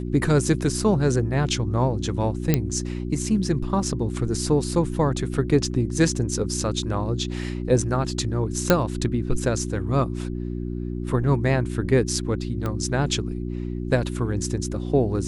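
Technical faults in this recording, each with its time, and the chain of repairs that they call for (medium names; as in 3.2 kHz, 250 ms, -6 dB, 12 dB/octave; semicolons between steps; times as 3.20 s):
hum 60 Hz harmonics 6 -29 dBFS
2.54 s: pop -5 dBFS
8.70 s: pop -2 dBFS
12.66 s: pop -15 dBFS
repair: de-click; de-hum 60 Hz, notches 6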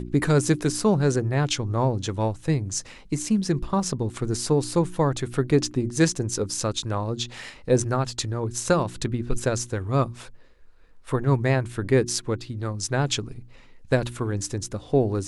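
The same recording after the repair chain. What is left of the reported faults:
nothing left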